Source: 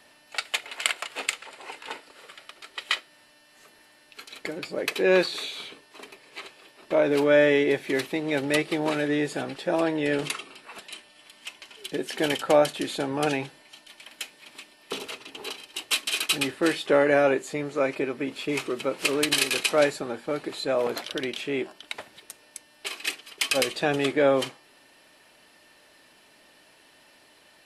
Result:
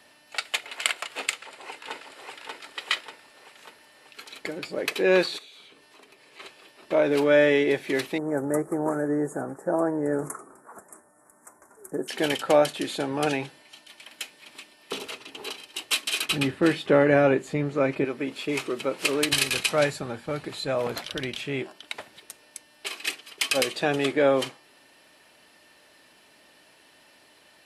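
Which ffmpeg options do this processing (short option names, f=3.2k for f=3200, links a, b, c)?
-filter_complex "[0:a]asplit=2[a][b];[b]afade=t=in:st=1.36:d=0.01,afade=t=out:st=2.51:d=0.01,aecho=0:1:590|1180|1770|2360|2950|3540|4130|4720:0.707946|0.38937|0.214154|0.117784|0.0647815|0.0356298|0.0195964|0.010778[c];[a][c]amix=inputs=2:normalize=0,asplit=3[d][e][f];[d]afade=t=out:st=5.37:d=0.02[g];[e]acompressor=threshold=-51dB:ratio=3:attack=3.2:release=140:knee=1:detection=peak,afade=t=in:st=5.37:d=0.02,afade=t=out:st=6.39:d=0.02[h];[f]afade=t=in:st=6.39:d=0.02[i];[g][h][i]amix=inputs=3:normalize=0,asettb=1/sr,asplit=3[j][k][l];[j]atrim=end=8.184[m];[k]atrim=start=8.18:end=12.08,asetpts=PTS-STARTPTS,afade=t=in:d=0.004:c=qsin,afade=t=out:st=3.896:d=0.004:c=qsin,asuperstop=centerf=3400:order=8:qfactor=0.59[n];[l]atrim=start=12.076[o];[m][n]acrossfade=d=0.004:c1=hsin:c2=qsin[p];[p][o]acrossfade=d=0.004:c1=qsin:c2=hsin,asettb=1/sr,asplit=3[q][r][s];[q]atrim=end=16.254[t];[r]atrim=start=16.25:end=18.05,asetpts=PTS-STARTPTS,afade=t=in:d=0.004:c=qsin,afade=t=out:st=1.796:d=0.004:c=qsin,bass=f=250:g=11,treble=f=4k:g=-6[u];[s]atrim=start=18.046[v];[t][u]acrossfade=d=0.004:c1=hsin:c2=qsin[w];[w][v]acrossfade=d=0.004:c1=qsin:c2=hsin,asplit=3[x][y][z];[x]afade=t=out:st=19.31:d=0.02[aa];[y]asubboost=boost=5.5:cutoff=130,afade=t=in:st=19.31:d=0.02,afade=t=out:st=21.62:d=0.02[ab];[z]afade=t=in:st=21.62:d=0.02[ac];[aa][ab][ac]amix=inputs=3:normalize=0,highpass=41"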